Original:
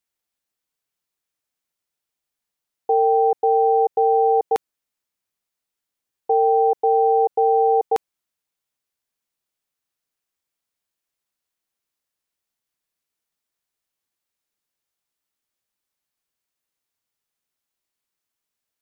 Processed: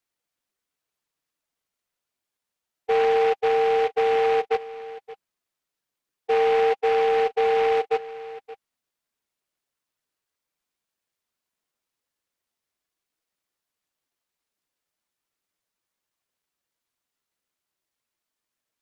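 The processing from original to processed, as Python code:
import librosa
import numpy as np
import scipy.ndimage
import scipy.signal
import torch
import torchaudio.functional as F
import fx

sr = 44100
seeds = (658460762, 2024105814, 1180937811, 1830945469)

y = fx.spec_expand(x, sr, power=2.1)
y = scipy.signal.sosfilt(scipy.signal.bessel(2, 210.0, 'highpass', norm='mag', fs=sr, output='sos'), y)
y = fx.notch(y, sr, hz=800.0, q=12.0)
y = y + 10.0 ** (-17.0 / 20.0) * np.pad(y, (int(574 * sr / 1000.0), 0))[:len(y)]
y = fx.noise_mod_delay(y, sr, seeds[0], noise_hz=1500.0, depth_ms=0.064)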